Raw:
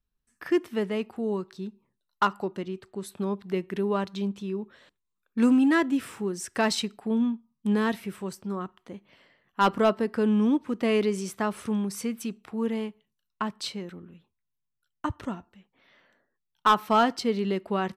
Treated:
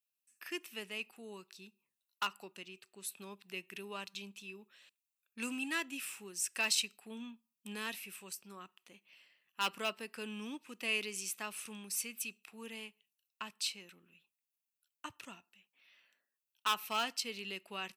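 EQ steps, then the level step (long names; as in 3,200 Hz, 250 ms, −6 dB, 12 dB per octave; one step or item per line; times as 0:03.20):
first difference
parametric band 150 Hz +8 dB 2.5 octaves
parametric band 2,600 Hz +13.5 dB 0.27 octaves
+1.0 dB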